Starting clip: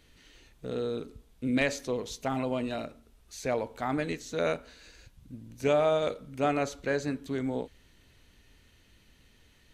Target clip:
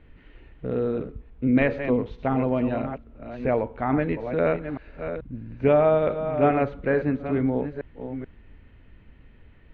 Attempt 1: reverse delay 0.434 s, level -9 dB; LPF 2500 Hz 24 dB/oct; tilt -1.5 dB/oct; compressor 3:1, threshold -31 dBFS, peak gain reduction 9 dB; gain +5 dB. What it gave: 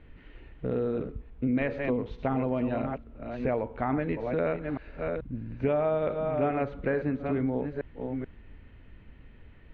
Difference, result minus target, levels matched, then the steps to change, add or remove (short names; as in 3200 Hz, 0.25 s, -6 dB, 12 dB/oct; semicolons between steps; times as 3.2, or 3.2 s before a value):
compressor: peak gain reduction +9 dB
remove: compressor 3:1, threshold -31 dBFS, peak gain reduction 9 dB